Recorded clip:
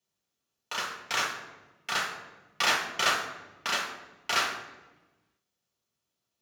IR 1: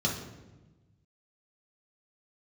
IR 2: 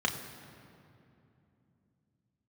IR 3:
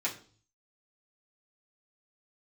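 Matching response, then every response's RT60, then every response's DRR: 1; 1.1 s, 2.8 s, 0.45 s; -3.5 dB, 1.5 dB, -8.0 dB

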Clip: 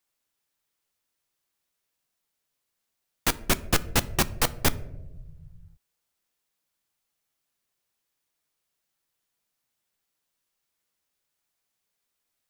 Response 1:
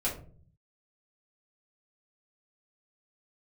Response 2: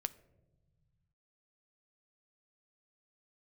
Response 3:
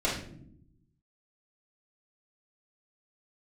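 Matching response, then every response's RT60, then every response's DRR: 2; 0.45 s, 1.2 s, no single decay rate; -7.0 dB, 13.0 dB, -9.5 dB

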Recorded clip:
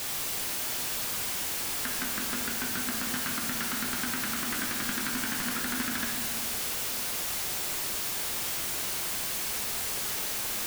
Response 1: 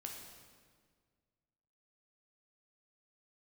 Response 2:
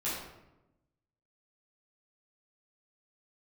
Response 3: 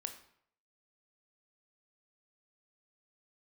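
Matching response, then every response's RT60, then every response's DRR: 1; 1.8 s, 0.95 s, 0.65 s; 0.5 dB, -10.0 dB, 6.0 dB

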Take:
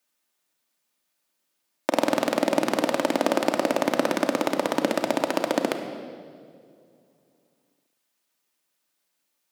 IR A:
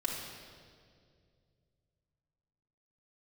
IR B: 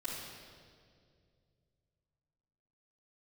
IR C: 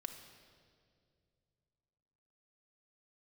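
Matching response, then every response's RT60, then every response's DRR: C; 2.2 s, 2.2 s, 2.2 s; -4.5 dB, -12.0 dB, 4.5 dB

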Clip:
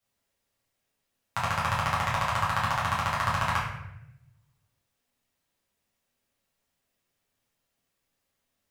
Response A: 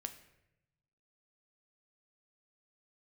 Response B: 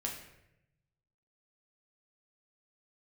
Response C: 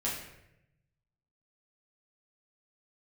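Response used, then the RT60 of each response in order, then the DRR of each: C; 0.85 s, 0.85 s, 0.85 s; 7.5 dB, -1.5 dB, -7.5 dB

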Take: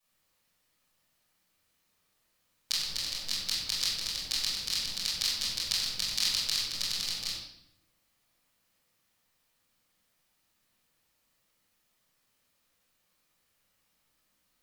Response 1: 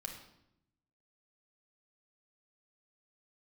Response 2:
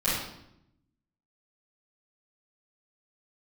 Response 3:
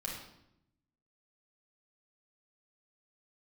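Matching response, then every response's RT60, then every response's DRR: 2; 0.80 s, 0.80 s, 0.80 s; 2.0 dB, -13.0 dB, -3.0 dB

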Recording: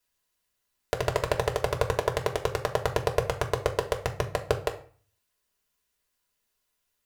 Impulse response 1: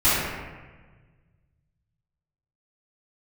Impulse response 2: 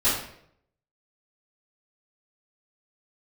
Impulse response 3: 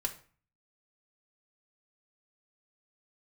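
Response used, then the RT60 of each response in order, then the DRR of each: 3; 1.4 s, 0.70 s, 0.40 s; -16.0 dB, -13.5 dB, 1.5 dB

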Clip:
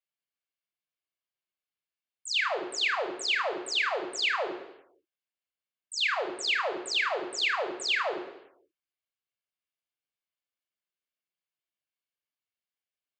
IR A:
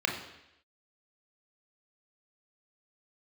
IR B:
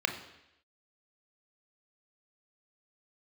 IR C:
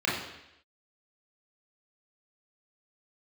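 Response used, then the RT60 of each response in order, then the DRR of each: B; 0.85 s, 0.85 s, 0.85 s; 1.0 dB, 5.0 dB, -7.0 dB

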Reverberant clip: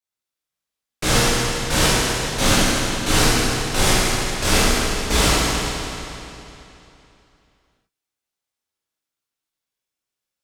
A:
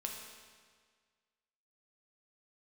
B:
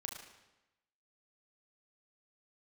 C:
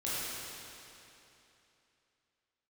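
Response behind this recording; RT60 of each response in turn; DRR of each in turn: C; 1.7 s, 1.0 s, 3.0 s; 0.0 dB, 0.5 dB, -10.5 dB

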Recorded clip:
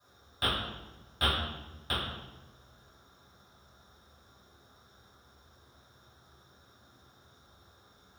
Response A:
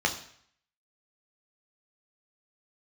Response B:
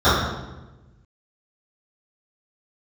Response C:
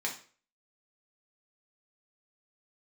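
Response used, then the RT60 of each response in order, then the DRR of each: B; 0.60 s, 1.1 s, 0.40 s; 2.0 dB, -17.5 dB, -2.0 dB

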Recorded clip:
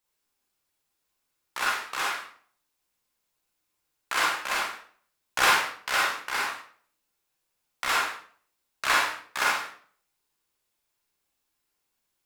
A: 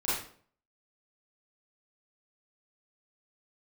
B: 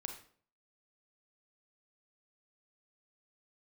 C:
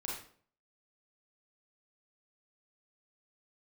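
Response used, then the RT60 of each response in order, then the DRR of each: C; 0.50 s, 0.50 s, 0.50 s; -11.0 dB, 4.0 dB, -4.5 dB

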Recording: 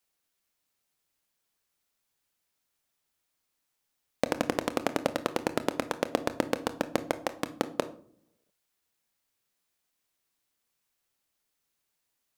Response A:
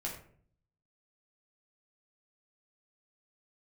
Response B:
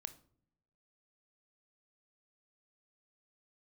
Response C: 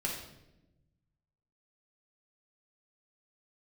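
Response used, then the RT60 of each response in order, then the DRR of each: B; 0.55 s, no single decay rate, 0.95 s; -3.5 dB, 11.0 dB, -3.5 dB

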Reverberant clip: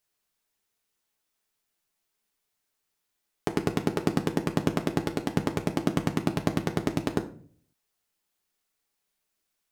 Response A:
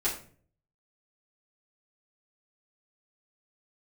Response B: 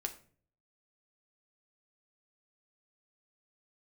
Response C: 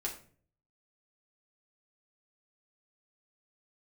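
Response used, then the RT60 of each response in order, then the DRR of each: B; 0.45 s, 0.45 s, 0.45 s; -10.0 dB, 4.0 dB, -3.0 dB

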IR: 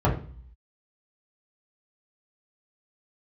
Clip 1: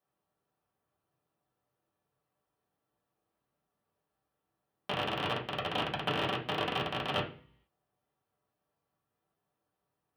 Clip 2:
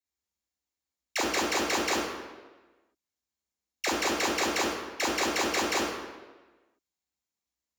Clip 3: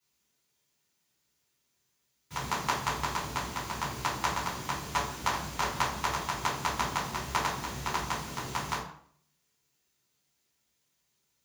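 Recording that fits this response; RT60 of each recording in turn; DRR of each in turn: 1; 0.45 s, 1.3 s, 0.60 s; -5.5 dB, -3.5 dB, -9.0 dB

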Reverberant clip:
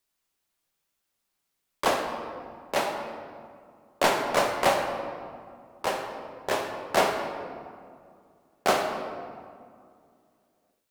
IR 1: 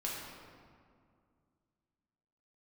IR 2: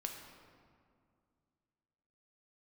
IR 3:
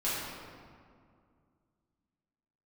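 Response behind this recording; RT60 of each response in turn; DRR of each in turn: 2; 2.2 s, 2.2 s, 2.2 s; -5.0 dB, 2.0 dB, -10.5 dB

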